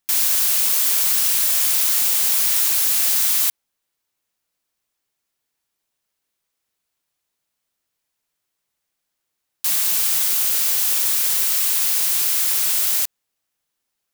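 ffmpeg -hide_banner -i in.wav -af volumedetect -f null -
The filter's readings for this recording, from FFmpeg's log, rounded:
mean_volume: -21.5 dB
max_volume: -4.4 dB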